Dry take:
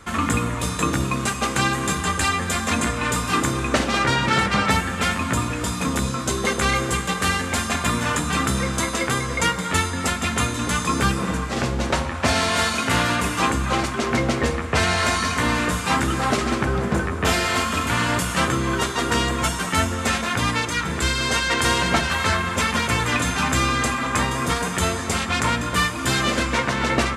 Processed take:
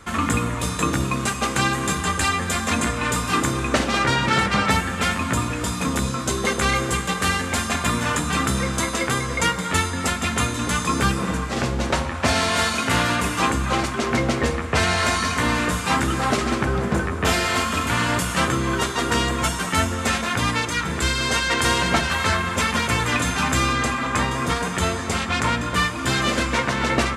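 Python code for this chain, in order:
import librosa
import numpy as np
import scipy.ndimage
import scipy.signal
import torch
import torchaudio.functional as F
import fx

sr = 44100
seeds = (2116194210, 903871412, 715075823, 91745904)

y = fx.high_shelf(x, sr, hz=8700.0, db=-7.5, at=(23.73, 26.22))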